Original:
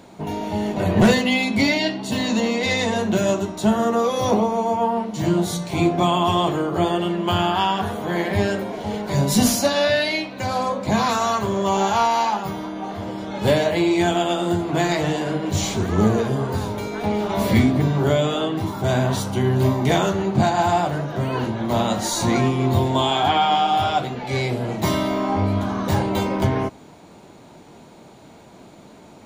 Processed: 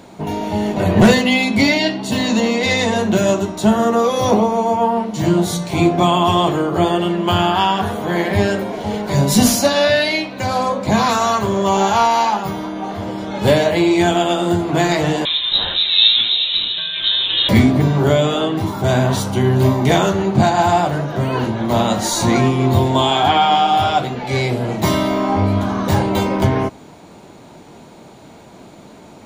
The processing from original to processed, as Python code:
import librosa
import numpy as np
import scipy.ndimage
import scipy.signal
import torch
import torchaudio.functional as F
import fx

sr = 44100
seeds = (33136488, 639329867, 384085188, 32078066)

y = fx.freq_invert(x, sr, carrier_hz=3900, at=(15.25, 17.49))
y = F.gain(torch.from_numpy(y), 4.5).numpy()